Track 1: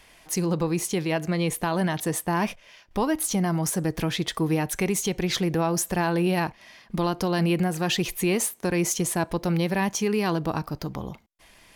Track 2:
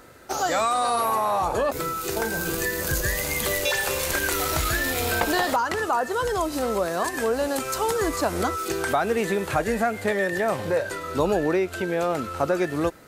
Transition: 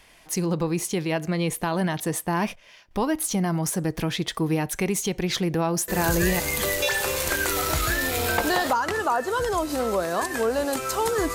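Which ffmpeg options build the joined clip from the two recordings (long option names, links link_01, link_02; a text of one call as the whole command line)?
ffmpeg -i cue0.wav -i cue1.wav -filter_complex "[0:a]apad=whole_dur=11.34,atrim=end=11.34,atrim=end=6.4,asetpts=PTS-STARTPTS[link_01];[1:a]atrim=start=2.71:end=8.17,asetpts=PTS-STARTPTS[link_02];[link_01][link_02]acrossfade=duration=0.52:curve1=log:curve2=log" out.wav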